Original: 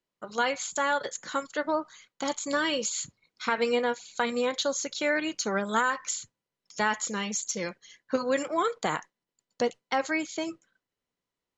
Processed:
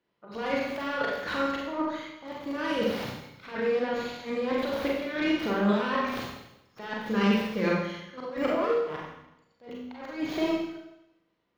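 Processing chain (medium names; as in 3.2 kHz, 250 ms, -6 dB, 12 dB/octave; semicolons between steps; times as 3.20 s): tracing distortion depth 0.48 ms; high-pass 55 Hz; treble shelf 7 kHz +7 dB; de-hum 83.27 Hz, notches 3; compressor with a negative ratio -33 dBFS, ratio -1; slow attack 250 ms; distance through air 290 m; Schroeder reverb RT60 0.88 s, combs from 32 ms, DRR -3 dB; trim +4 dB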